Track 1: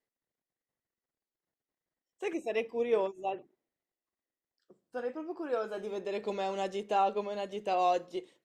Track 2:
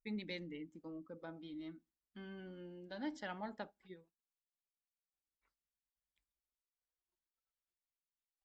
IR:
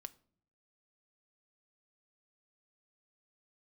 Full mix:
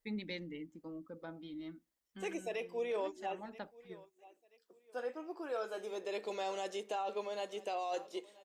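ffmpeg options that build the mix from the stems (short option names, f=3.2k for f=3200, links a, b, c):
-filter_complex "[0:a]highpass=340,highshelf=f=4.5k:g=8,volume=-3dB,asplit=3[a][b][c];[b]volume=-22.5dB[d];[1:a]volume=2dB[e];[c]apad=whole_len=372387[f];[e][f]sidechaincompress=threshold=-38dB:ratio=8:attack=6.9:release=666[g];[d]aecho=0:1:980|1960|2940|3920:1|0.3|0.09|0.027[h];[a][g][h]amix=inputs=3:normalize=0,alimiter=level_in=5.5dB:limit=-24dB:level=0:latency=1:release=14,volume=-5.5dB"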